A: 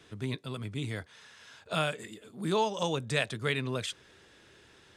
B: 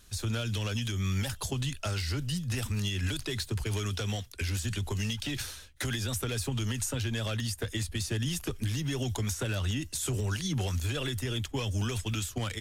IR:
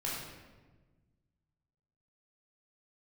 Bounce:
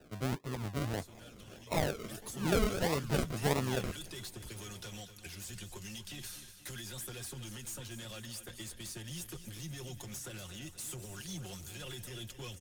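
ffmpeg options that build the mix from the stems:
-filter_complex "[0:a]acrusher=samples=40:mix=1:aa=0.000001:lfo=1:lforange=24:lforate=1.6,volume=-0.5dB[a];[1:a]highshelf=f=6.2k:g=11,asoftclip=type=hard:threshold=-28.5dB,aecho=1:1:5.6:0.56,adelay=850,volume=-12.5dB,afade=t=in:st=1.99:d=0.25:silence=0.316228,asplit=2[b][c];[c]volume=-12dB,aecho=0:1:241|482|723|964|1205|1446|1687|1928|2169:1|0.58|0.336|0.195|0.113|0.0656|0.0381|0.0221|0.0128[d];[a][b][d]amix=inputs=3:normalize=0"

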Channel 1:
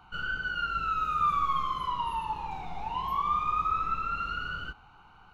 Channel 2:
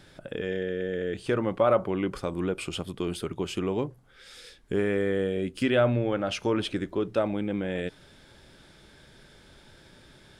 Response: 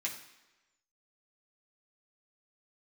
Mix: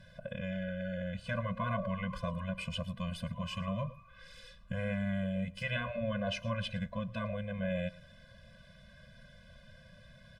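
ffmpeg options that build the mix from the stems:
-filter_complex "[0:a]adelay=400,volume=-19.5dB[a];[1:a]volume=0dB,asplit=2[b][c];[c]volume=-20.5dB,aecho=0:1:111:1[d];[a][b][d]amix=inputs=3:normalize=0,afftfilt=real='re*lt(hypot(re,im),0.251)':imag='im*lt(hypot(re,im),0.251)':win_size=1024:overlap=0.75,equalizer=f=9.8k:w=0.53:g=-10,afftfilt=real='re*eq(mod(floor(b*sr/1024/240),2),0)':imag='im*eq(mod(floor(b*sr/1024/240),2),0)':win_size=1024:overlap=0.75"

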